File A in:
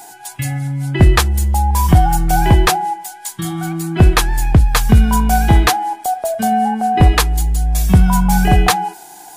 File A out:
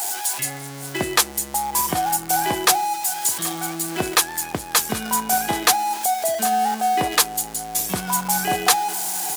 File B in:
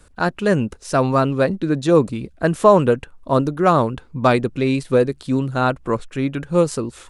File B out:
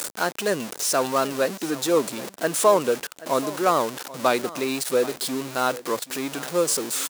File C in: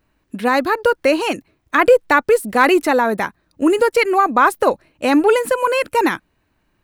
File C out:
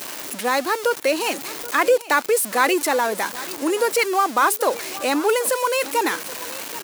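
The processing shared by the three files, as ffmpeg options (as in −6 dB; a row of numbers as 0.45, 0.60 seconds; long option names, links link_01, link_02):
-filter_complex "[0:a]aeval=exprs='val(0)+0.5*0.0841*sgn(val(0))':channel_layout=same,highpass=170,bass=frequency=250:gain=-12,treble=frequency=4000:gain=8,acrusher=bits=9:mix=0:aa=0.000001,asplit=2[link_01][link_02];[link_02]aecho=0:1:780:0.133[link_03];[link_01][link_03]amix=inputs=2:normalize=0,volume=-5.5dB"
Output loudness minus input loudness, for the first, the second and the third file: −6.0, −5.0, −4.5 LU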